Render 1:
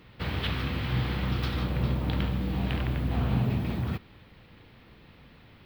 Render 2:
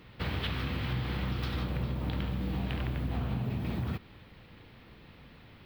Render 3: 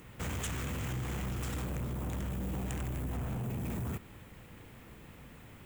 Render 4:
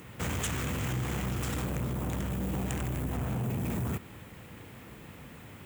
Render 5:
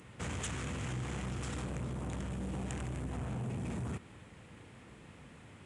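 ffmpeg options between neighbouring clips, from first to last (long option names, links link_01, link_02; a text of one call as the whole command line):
ffmpeg -i in.wav -af "acompressor=threshold=-29dB:ratio=6" out.wav
ffmpeg -i in.wav -af "asoftclip=type=tanh:threshold=-34dB,highshelf=frequency=5700:width_type=q:width=3:gain=10.5,volume=1.5dB" out.wav
ffmpeg -i in.wav -af "highpass=70,volume=5dB" out.wav
ffmpeg -i in.wav -af "aresample=22050,aresample=44100,volume=-6dB" out.wav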